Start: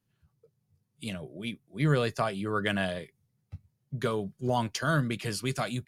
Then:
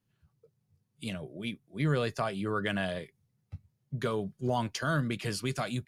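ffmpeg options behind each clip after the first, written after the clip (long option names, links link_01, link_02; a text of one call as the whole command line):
ffmpeg -i in.wav -filter_complex "[0:a]highshelf=frequency=8300:gain=-4,asplit=2[link_01][link_02];[link_02]alimiter=limit=-22dB:level=0:latency=1:release=121,volume=1.5dB[link_03];[link_01][link_03]amix=inputs=2:normalize=0,volume=-7dB" out.wav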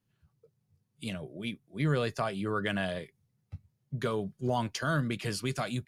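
ffmpeg -i in.wav -af anull out.wav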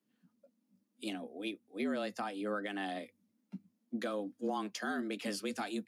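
ffmpeg -i in.wav -af "afreqshift=99,alimiter=level_in=0.5dB:limit=-24dB:level=0:latency=1:release=400,volume=-0.5dB,volume=-2.5dB" out.wav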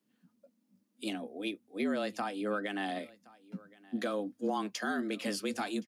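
ffmpeg -i in.wav -af "aecho=1:1:1070:0.0708,volume=3dB" out.wav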